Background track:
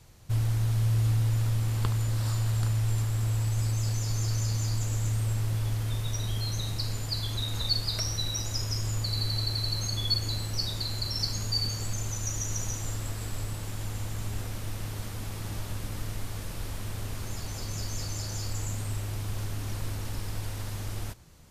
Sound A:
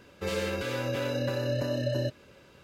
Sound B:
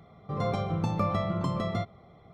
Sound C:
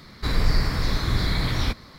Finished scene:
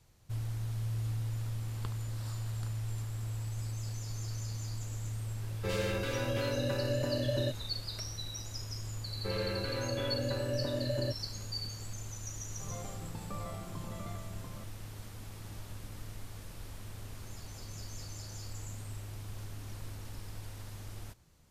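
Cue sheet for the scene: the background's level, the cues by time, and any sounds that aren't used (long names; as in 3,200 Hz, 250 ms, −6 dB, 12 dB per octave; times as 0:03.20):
background track −10 dB
0:05.42: mix in A −3 dB
0:09.03: mix in A −4.5 dB + low-pass filter 2,400 Hz
0:12.31: mix in B −16 dB + single-tap delay 690 ms −4 dB
not used: C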